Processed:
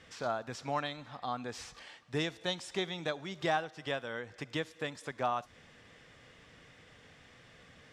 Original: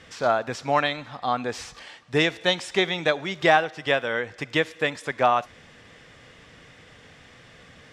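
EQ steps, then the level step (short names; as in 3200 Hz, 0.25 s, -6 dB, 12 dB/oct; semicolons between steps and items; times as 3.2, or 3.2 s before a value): dynamic EQ 520 Hz, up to -5 dB, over -33 dBFS, Q 0.8; dynamic EQ 2200 Hz, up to -8 dB, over -39 dBFS, Q 1.1; -8.0 dB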